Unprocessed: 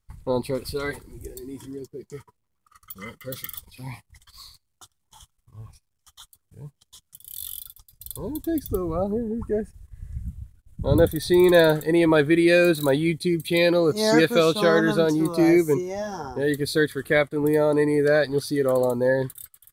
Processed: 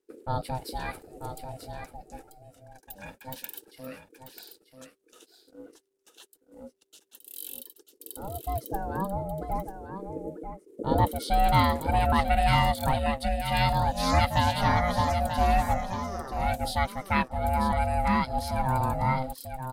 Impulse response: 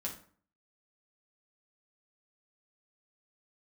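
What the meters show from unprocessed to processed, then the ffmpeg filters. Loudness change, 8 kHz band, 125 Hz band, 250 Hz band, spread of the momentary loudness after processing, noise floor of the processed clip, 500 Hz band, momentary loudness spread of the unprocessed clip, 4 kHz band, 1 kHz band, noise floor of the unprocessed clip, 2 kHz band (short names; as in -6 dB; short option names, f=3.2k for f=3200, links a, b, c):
-5.5 dB, -5.0 dB, 0.0 dB, -10.5 dB, 19 LU, -69 dBFS, -12.5 dB, 20 LU, -4.0 dB, +7.5 dB, -74 dBFS, -6.5 dB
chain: -af "aeval=exprs='val(0)*sin(2*PI*390*n/s)':c=same,aecho=1:1:939:0.355,volume=-2.5dB"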